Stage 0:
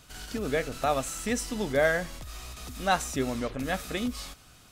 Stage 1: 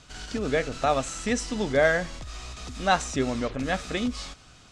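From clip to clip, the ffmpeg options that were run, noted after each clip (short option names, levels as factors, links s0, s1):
-af "lowpass=f=7700:w=0.5412,lowpass=f=7700:w=1.3066,volume=1.41"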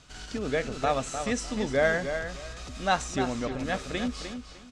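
-filter_complex "[0:a]asplit=2[s0][s1];[s1]adelay=303,lowpass=f=4800:p=1,volume=0.398,asplit=2[s2][s3];[s3]adelay=303,lowpass=f=4800:p=1,volume=0.23,asplit=2[s4][s5];[s5]adelay=303,lowpass=f=4800:p=1,volume=0.23[s6];[s0][s2][s4][s6]amix=inputs=4:normalize=0,volume=0.708"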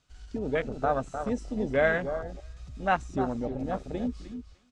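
-af "afwtdn=0.0282"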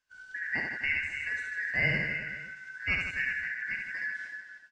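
-af "afftfilt=real='real(if(lt(b,272),68*(eq(floor(b/68),0)*1+eq(floor(b/68),1)*0+eq(floor(b/68),2)*3+eq(floor(b/68),3)*2)+mod(b,68),b),0)':imag='imag(if(lt(b,272),68*(eq(floor(b/68),0)*1+eq(floor(b/68),1)*0+eq(floor(b/68),2)*3+eq(floor(b/68),3)*2)+mod(b,68),b),0)':win_size=2048:overlap=0.75,aecho=1:1:70|154|254.8|375.8|520.9:0.631|0.398|0.251|0.158|0.1,agate=range=0.447:threshold=0.00355:ratio=16:detection=peak,volume=0.531"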